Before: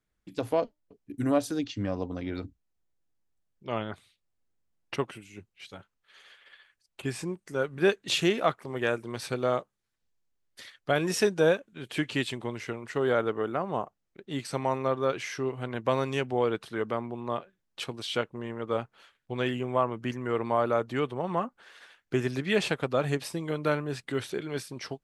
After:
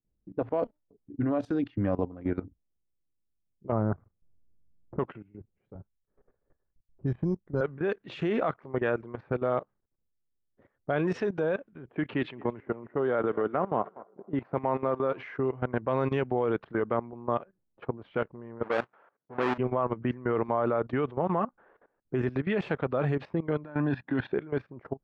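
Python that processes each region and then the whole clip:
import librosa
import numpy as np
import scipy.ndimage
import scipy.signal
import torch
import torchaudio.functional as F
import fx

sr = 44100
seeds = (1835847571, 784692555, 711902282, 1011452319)

y = fx.chain(x, sr, fx.lowpass(hz=1300.0, slope=24),
    fx.low_shelf(hz=200.0, db=11.0), at=(3.72, 4.99))
y = fx.chain(y, sr, fx.riaa(side='playback'),
    fx.transient(attack_db=-6, sustain_db=-11),
    fx.resample_bad(factor=8, down='filtered', up='hold'), at=(5.75, 7.61))
y = fx.chain(y, sr, fx.bandpass_edges(low_hz=130.0, high_hz=4400.0),
    fx.echo_thinned(ms=224, feedback_pct=68, hz=360.0, wet_db=-19.0), at=(11.92, 15.23))
y = fx.chain(y, sr, fx.halfwave_hold(),
    fx.weighting(curve='A'), at=(18.63, 19.58))
y = fx.chain(y, sr, fx.comb(ms=1.2, depth=0.52),
    fx.over_compress(threshold_db=-33.0, ratio=-1.0),
    fx.cabinet(low_hz=130.0, low_slope=12, high_hz=5400.0, hz=(280.0, 1600.0, 3700.0), db=(8, 3, 7)), at=(23.64, 24.33))
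y = fx.env_lowpass(y, sr, base_hz=400.0, full_db=-23.0)
y = scipy.signal.sosfilt(scipy.signal.butter(2, 1700.0, 'lowpass', fs=sr, output='sos'), y)
y = fx.level_steps(y, sr, step_db=17)
y = y * librosa.db_to_amplitude(7.5)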